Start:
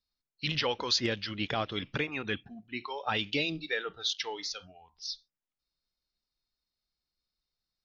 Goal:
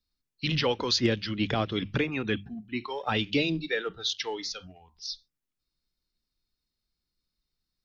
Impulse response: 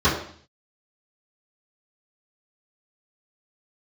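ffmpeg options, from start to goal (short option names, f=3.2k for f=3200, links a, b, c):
-filter_complex "[0:a]bandreject=f=50:t=h:w=6,bandreject=f=100:t=h:w=6,bandreject=f=150:t=h:w=6,bandreject=f=200:t=h:w=6,acrossover=split=450|730[a][b][c];[a]acontrast=84[d];[b]aeval=exprs='sgn(val(0))*max(abs(val(0))-0.00126,0)':c=same[e];[d][e][c]amix=inputs=3:normalize=0,volume=1.5dB"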